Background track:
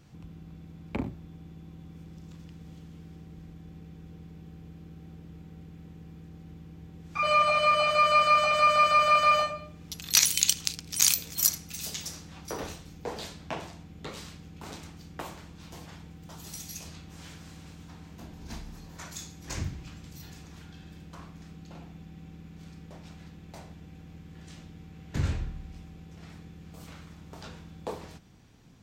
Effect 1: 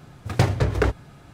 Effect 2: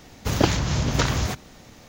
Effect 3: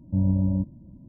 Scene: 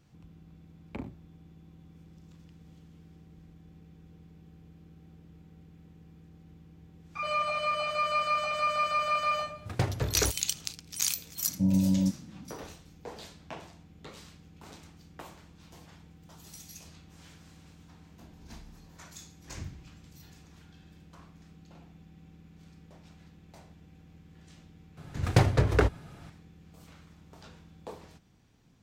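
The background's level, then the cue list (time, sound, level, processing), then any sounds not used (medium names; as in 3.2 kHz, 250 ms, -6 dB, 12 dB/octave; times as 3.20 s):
background track -7 dB
9.40 s: add 1 -9.5 dB
11.47 s: add 3 -2 dB + resonant low shelf 110 Hz -11.5 dB, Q 1.5
24.97 s: add 1 -2.5 dB
not used: 2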